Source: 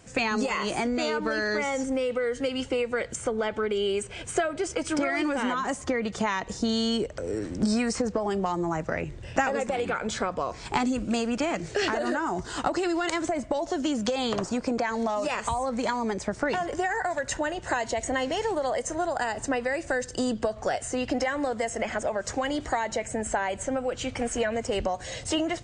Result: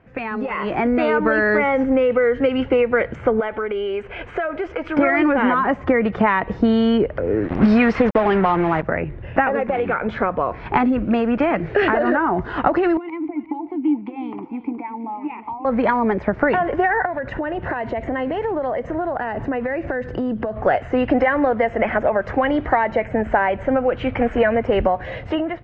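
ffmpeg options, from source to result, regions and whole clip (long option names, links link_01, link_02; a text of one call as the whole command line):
ffmpeg -i in.wav -filter_complex "[0:a]asettb=1/sr,asplit=3[link_01][link_02][link_03];[link_01]atrim=end=3.404[link_04];[link_02]atrim=start=3.4:end=4.97,asetpts=PTS-STARTPTS,afade=type=in:duration=0.004:curve=qsin,afade=type=out:start_time=1.566:duration=0.004:curve=qsin,equalizer=frequency=140:width=0.68:gain=-10.5,acompressor=threshold=-32dB:ratio=2.5:attack=3.2:release=140:knee=1:detection=peak[link_05];[link_03]atrim=start=4.966[link_06];[link_04][link_05]acrossfade=duration=0.004:curve1=hsin:curve2=qsin[link_07];[link_07][link_06]acrossfade=duration=0.004:curve1=qsin:curve2=hsin,asettb=1/sr,asplit=3[link_08][link_09][link_10];[link_08]atrim=end=7.484[link_11];[link_09]atrim=start=7.48:end=8.83,asetpts=PTS-STARTPTS,afade=type=in:duration=0.004:curve=qsin,afade=type=out:start_time=1.346:duration=0.004:curve=qsin,equalizer=frequency=4600:width_type=o:width=2.3:gain=9.5,asoftclip=type=hard:threshold=-18dB,acrusher=bits=4:mix=0:aa=0.5[link_12];[link_10]atrim=start=8.826[link_13];[link_11][link_12]acrossfade=duration=0.004:curve1=hsin:curve2=qsin[link_14];[link_14][link_13]acrossfade=duration=0.004:curve1=qsin:curve2=hsin,asettb=1/sr,asplit=3[link_15][link_16][link_17];[link_15]atrim=end=12.974[link_18];[link_16]atrim=start=12.97:end=15.65,asetpts=PTS-STARTPTS,afade=type=in:duration=0.004:curve=qsin,afade=type=out:start_time=2.676:duration=0.004:curve=qsin,asplit=3[link_19][link_20][link_21];[link_19]bandpass=frequency=300:width_type=q:width=8,volume=0dB[link_22];[link_20]bandpass=frequency=870:width_type=q:width=8,volume=-6dB[link_23];[link_21]bandpass=frequency=2240:width_type=q:width=8,volume=-9dB[link_24];[link_22][link_23][link_24]amix=inputs=3:normalize=0,aecho=1:1:361:0.188,atrim=end_sample=118188[link_25];[link_17]atrim=start=15.646[link_26];[link_18][link_25]acrossfade=duration=0.004:curve1=hsin:curve2=qsin[link_27];[link_27][link_26]acrossfade=duration=0.004:curve1=qsin:curve2=hsin,asettb=1/sr,asplit=3[link_28][link_29][link_30];[link_28]atrim=end=17.054[link_31];[link_29]atrim=start=17.05:end=20.65,asetpts=PTS-STARTPTS,afade=type=in:duration=0.004:curve=qsin,afade=type=out:start_time=3.596:duration=0.004:curve=qsin,equalizer=frequency=180:width=0.42:gain=5.5,acompressor=threshold=-32dB:ratio=4:attack=3.2:release=140:knee=1:detection=peak[link_32];[link_30]atrim=start=20.646[link_33];[link_31][link_32]acrossfade=duration=0.004:curve1=hsin:curve2=qsin[link_34];[link_34][link_33]acrossfade=duration=0.004:curve1=qsin:curve2=hsin,lowpass=frequency=2300:width=0.5412,lowpass=frequency=2300:width=1.3066,dynaudnorm=framelen=200:gausssize=7:maxgain=11dB" out.wav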